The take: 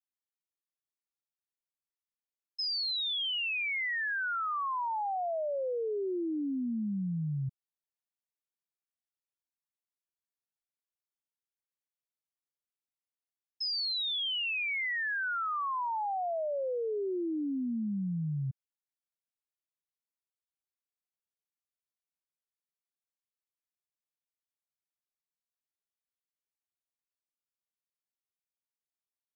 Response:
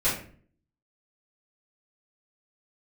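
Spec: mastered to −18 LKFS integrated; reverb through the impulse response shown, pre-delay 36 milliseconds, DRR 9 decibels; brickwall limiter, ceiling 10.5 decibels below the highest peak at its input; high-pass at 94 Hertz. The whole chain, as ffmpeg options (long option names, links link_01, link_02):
-filter_complex "[0:a]highpass=94,alimiter=level_in=16.5dB:limit=-24dB:level=0:latency=1,volume=-16.5dB,asplit=2[link_01][link_02];[1:a]atrim=start_sample=2205,adelay=36[link_03];[link_02][link_03]afir=irnorm=-1:irlink=0,volume=-21dB[link_04];[link_01][link_04]amix=inputs=2:normalize=0,volume=24.5dB"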